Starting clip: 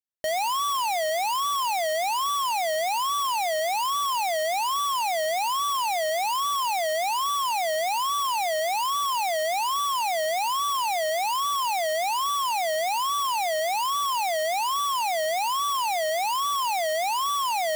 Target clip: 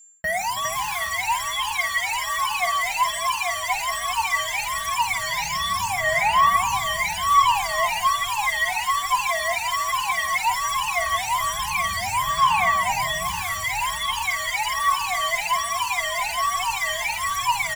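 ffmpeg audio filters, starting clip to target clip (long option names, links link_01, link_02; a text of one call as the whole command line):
ffmpeg -i in.wav -filter_complex "[0:a]highpass=frequency=73:poles=1,bandreject=frequency=5000:width=16,aphaser=in_gain=1:out_gain=1:delay=3:decay=0.69:speed=0.16:type=sinusoidal,firequalizer=gain_entry='entry(190,0);entry(320,-22);entry(1000,-4);entry(1600,7);entry(3300,-5);entry(5900,-2);entry(9300,-3);entry(15000,-7)':delay=0.05:min_phase=1,areverse,acompressor=mode=upward:threshold=-25dB:ratio=2.5,areverse,asubboost=boost=6:cutoff=170,acrossover=split=2200[link_01][link_02];[link_02]volume=33.5dB,asoftclip=hard,volume=-33.5dB[link_03];[link_01][link_03]amix=inputs=2:normalize=0,aeval=exprs='val(0)+0.00316*sin(2*PI*7300*n/s)':channel_layout=same,aecho=1:1:51|170|325|407:0.376|0.178|0.2|0.447,asplit=2[link_04][link_05];[link_05]adelay=4.4,afreqshift=1.3[link_06];[link_04][link_06]amix=inputs=2:normalize=1,volume=6.5dB" out.wav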